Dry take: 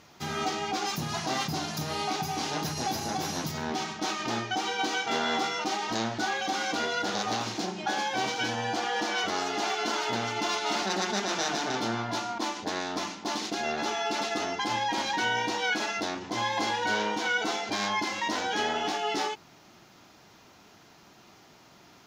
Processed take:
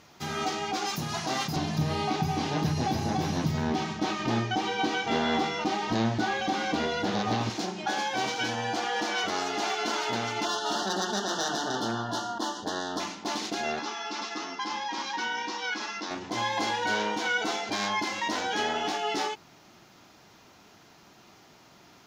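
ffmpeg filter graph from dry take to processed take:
ffmpeg -i in.wav -filter_complex "[0:a]asettb=1/sr,asplit=3[link_01][link_02][link_03];[link_01]atrim=end=1.564[link_04];[link_02]atrim=start=1.56:end=7.5,asetpts=PTS-STARTPTS,afade=type=in:duration=0.004:curve=qsin,afade=type=out:start_time=5.936:duration=0.004:curve=qsin,acrossover=split=4600[link_05][link_06];[link_06]acompressor=threshold=-48dB:ratio=4:attack=1:release=60[link_07];[link_05][link_07]amix=inputs=2:normalize=0,lowshelf=frequency=250:gain=12,bandreject=frequency=1400:width=15[link_08];[link_03]atrim=start=7.496[link_09];[link_04][link_08]acrossfade=duration=0.004:curve1=hsin:curve2=qsin[link_10];[link_10][link_09]acrossfade=duration=0.004:curve1=qsin:curve2=hsin,asettb=1/sr,asplit=3[link_11][link_12][link_13];[link_11]atrim=end=10.454[link_14];[link_12]atrim=start=10.45:end=13,asetpts=PTS-STARTPTS,afade=type=in:duration=0.004:curve=qsin,afade=type=out:start_time=2.546:duration=0.004:curve=qsin,asuperstop=centerf=2300:order=12:qfactor=2.4,asoftclip=type=hard:threshold=-21.5dB[link_15];[link_13]atrim=start=12.996[link_16];[link_14][link_15]acrossfade=duration=0.004:curve1=hsin:curve2=qsin[link_17];[link_17][link_16]acrossfade=duration=0.004:curve1=qsin:curve2=hsin,asettb=1/sr,asplit=3[link_18][link_19][link_20];[link_18]atrim=end=13.794[link_21];[link_19]atrim=start=13.79:end=16.11,asetpts=PTS-STARTPTS,afade=type=in:duration=0.004:curve=qsin,afade=type=out:start_time=2.316:duration=0.004:curve=qsin,highpass=frequency=190:width=0.5412,highpass=frequency=190:width=1.3066,equalizer=frequency=450:width_type=q:width=4:gain=-3,equalizer=frequency=650:width_type=q:width=4:gain=-8,equalizer=frequency=1100:width_type=q:width=4:gain=7,equalizer=frequency=5300:width_type=q:width=4:gain=5,lowpass=frequency=6900:width=0.5412,lowpass=frequency=6900:width=1.3066,flanger=delay=5.9:depth=4.3:regen=81:speed=1.6:shape=triangular[link_22];[link_20]atrim=start=16.106[link_23];[link_21][link_22]acrossfade=duration=0.004:curve1=hsin:curve2=qsin[link_24];[link_24][link_23]acrossfade=duration=0.004:curve1=qsin:curve2=hsin" out.wav

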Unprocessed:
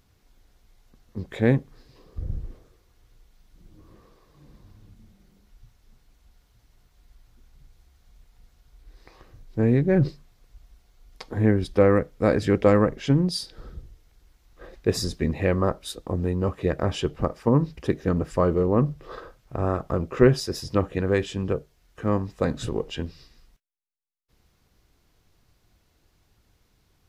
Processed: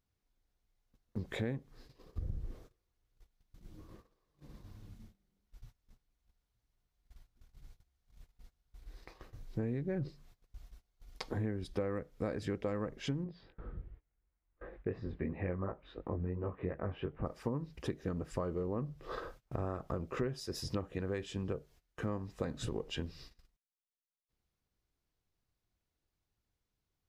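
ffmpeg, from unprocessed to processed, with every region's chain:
ffmpeg -i in.wav -filter_complex "[0:a]asettb=1/sr,asplit=3[link_01][link_02][link_03];[link_01]atrim=end=13.244[link_04];[link_02]atrim=start=13.24:end=17.26,asetpts=PTS-STARTPTS,afade=type=in:duration=0.004:curve=qsin,afade=type=out:start_time=4.016:duration=0.004:curve=qsin,lowpass=frequency=2300:width=0.5412,lowpass=frequency=2300:width=1.3066,flanger=delay=18:depth=5:speed=2.8[link_05];[link_03]atrim=start=17.256[link_06];[link_04][link_05]acrossfade=duration=0.004:curve1=hsin:curve2=qsin[link_07];[link_07][link_06]acrossfade=duration=0.004:curve1=qsin:curve2=hsin,agate=range=-20dB:threshold=-51dB:ratio=16:detection=peak,acompressor=threshold=-33dB:ratio=6,volume=-1.5dB" out.wav

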